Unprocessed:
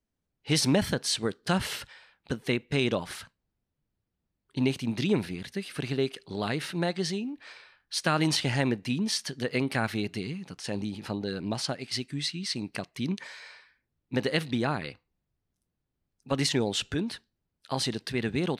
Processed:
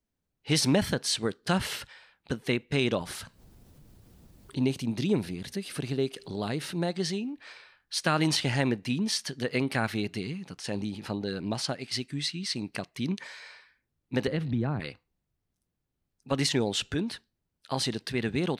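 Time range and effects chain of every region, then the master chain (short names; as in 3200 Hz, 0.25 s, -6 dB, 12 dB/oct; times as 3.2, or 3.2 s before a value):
3.01–7 bell 1900 Hz -6 dB 2.1 oct + upward compressor, threshold -31 dBFS
14.27–14.8 RIAA curve playback + compressor 3:1, threshold -26 dBFS + three-band expander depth 40%
whole clip: dry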